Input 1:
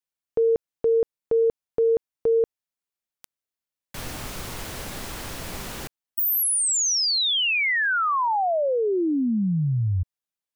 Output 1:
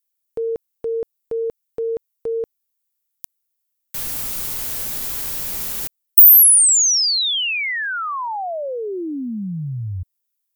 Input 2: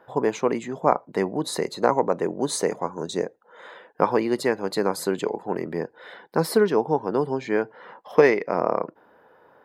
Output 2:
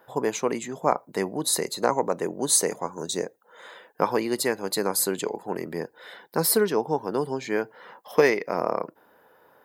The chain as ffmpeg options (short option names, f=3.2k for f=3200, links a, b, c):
-af "aemphasis=mode=production:type=75fm,volume=-2.5dB"